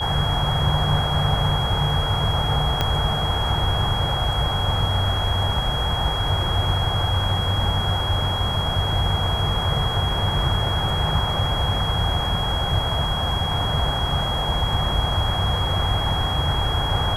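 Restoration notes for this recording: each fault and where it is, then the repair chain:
whistle 3,300 Hz −26 dBFS
0:02.81: click −7 dBFS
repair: click removal
notch filter 3,300 Hz, Q 30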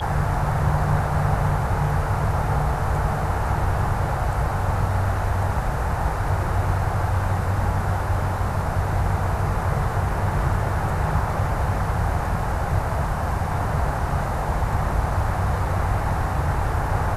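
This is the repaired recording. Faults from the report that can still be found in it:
0:02.81: click

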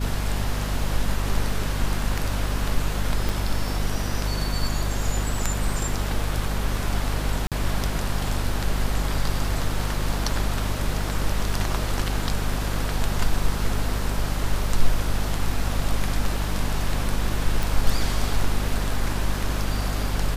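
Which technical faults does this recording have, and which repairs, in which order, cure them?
mains hum 50 Hz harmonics 5 −27 dBFS
0:03.29: click
0:07.47–0:07.52: drop-out 47 ms
0:17.63: click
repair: click removal
hum removal 50 Hz, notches 5
repair the gap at 0:07.47, 47 ms

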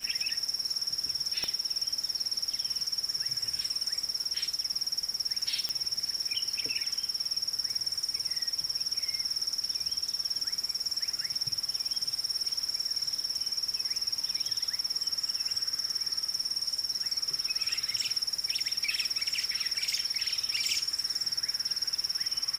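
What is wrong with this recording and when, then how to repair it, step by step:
surface crackle 32 per second −39 dBFS
0:01.44: click −18 dBFS
0:05.69: click −17 dBFS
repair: click removal

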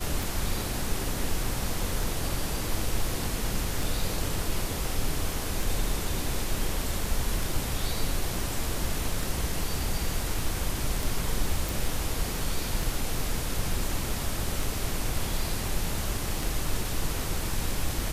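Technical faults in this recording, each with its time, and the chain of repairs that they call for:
scratch tick 33 1/3 rpm
0:11.69: click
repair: click removal

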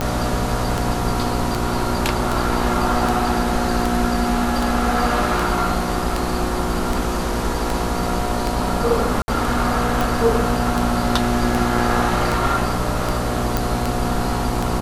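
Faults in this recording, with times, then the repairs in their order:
mains buzz 60 Hz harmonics 14 −25 dBFS
scratch tick 78 rpm −7 dBFS
0:09.22–0:09.28: drop-out 60 ms
0:13.57: click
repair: click removal
hum removal 60 Hz, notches 14
repair the gap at 0:09.22, 60 ms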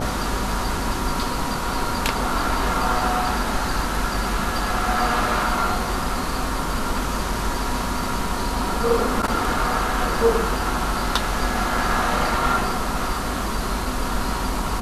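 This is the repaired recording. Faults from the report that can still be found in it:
none of them is left

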